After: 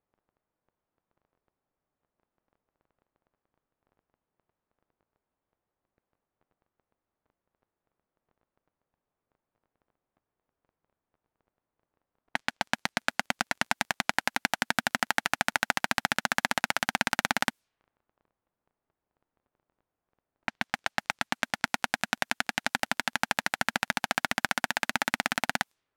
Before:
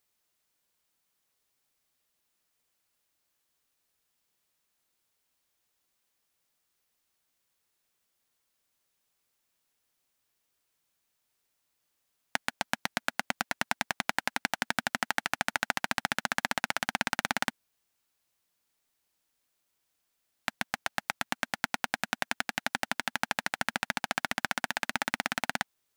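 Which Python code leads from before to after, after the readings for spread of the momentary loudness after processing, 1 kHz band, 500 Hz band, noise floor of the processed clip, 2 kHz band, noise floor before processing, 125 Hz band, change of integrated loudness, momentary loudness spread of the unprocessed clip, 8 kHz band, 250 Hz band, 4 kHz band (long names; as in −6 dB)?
5 LU, +3.0 dB, +3.0 dB, below −85 dBFS, +3.0 dB, −79 dBFS, +3.0 dB, +3.0 dB, 4 LU, +2.5 dB, +3.0 dB, +3.0 dB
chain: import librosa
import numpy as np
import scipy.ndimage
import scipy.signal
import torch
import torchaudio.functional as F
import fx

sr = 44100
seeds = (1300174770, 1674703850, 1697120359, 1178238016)

y = fx.dmg_crackle(x, sr, seeds[0], per_s=12.0, level_db=-45.0)
y = fx.env_lowpass(y, sr, base_hz=950.0, full_db=-33.0)
y = y * 10.0 ** (3.0 / 20.0)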